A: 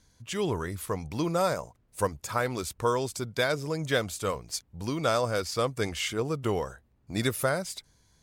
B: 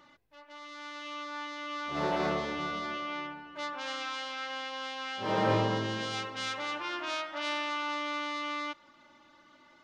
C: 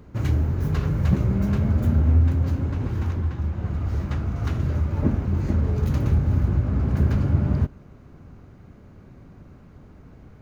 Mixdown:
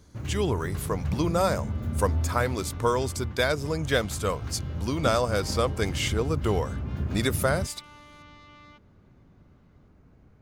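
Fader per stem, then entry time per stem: +2.0, −16.5, −10.0 decibels; 0.00, 0.05, 0.00 seconds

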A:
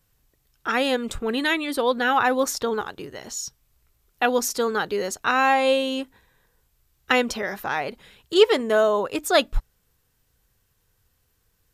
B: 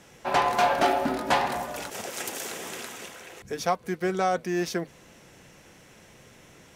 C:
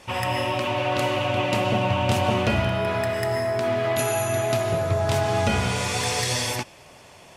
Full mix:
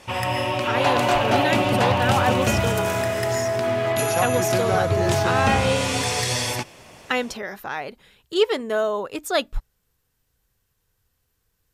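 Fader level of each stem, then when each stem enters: −3.5, 0.0, +1.0 decibels; 0.00, 0.50, 0.00 seconds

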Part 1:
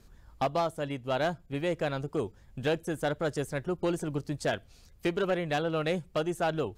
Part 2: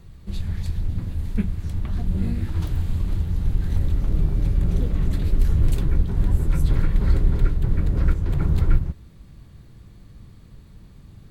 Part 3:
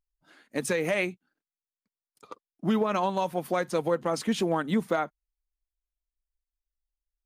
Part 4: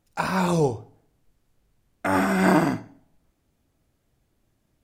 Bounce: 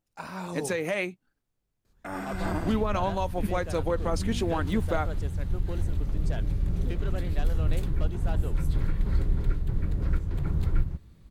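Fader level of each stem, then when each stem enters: −10.5, −7.0, −2.0, −13.5 decibels; 1.85, 2.05, 0.00, 0.00 seconds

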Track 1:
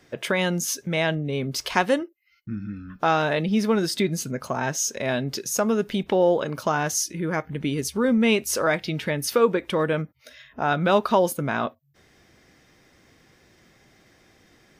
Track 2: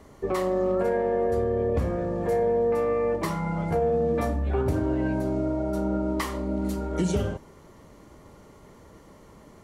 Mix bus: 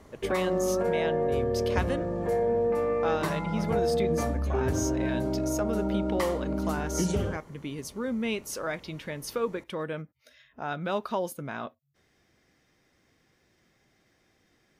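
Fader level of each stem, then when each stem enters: −10.5, −2.5 decibels; 0.00, 0.00 seconds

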